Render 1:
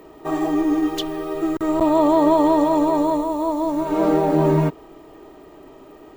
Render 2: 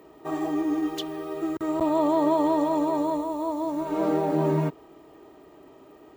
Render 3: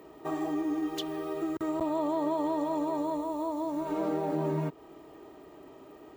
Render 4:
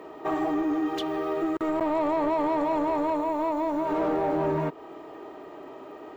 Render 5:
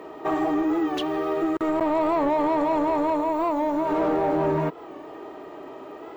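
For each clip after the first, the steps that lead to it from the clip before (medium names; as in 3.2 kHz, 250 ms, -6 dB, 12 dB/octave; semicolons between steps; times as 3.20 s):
high-pass 64 Hz 12 dB/octave; trim -6.5 dB
compression 2:1, threshold -32 dBFS, peak gain reduction 8 dB
overdrive pedal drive 17 dB, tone 1.4 kHz, clips at -18.5 dBFS; trim +2 dB
warped record 45 rpm, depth 100 cents; trim +3 dB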